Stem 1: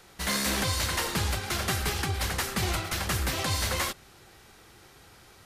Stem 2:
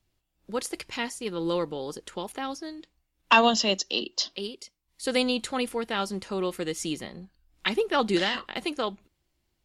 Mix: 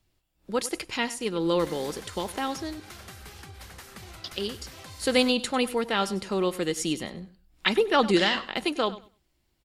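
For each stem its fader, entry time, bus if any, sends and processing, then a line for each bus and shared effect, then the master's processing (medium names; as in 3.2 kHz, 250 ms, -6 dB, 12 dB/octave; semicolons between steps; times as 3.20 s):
-7.0 dB, 1.40 s, no send, no echo send, compression 6:1, threshold -35 dBFS, peak gain reduction 10.5 dB
+3.0 dB, 0.00 s, muted 2.80–4.24 s, no send, echo send -16.5 dB, band-stop 6.2 kHz, Q 23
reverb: none
echo: feedback delay 98 ms, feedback 19%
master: none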